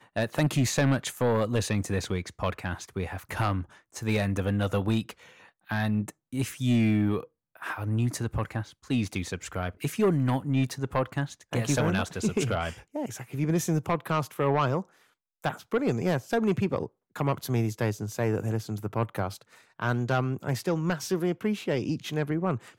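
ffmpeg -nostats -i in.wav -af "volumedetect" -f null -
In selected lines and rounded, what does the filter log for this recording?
mean_volume: -28.4 dB
max_volume: -17.6 dB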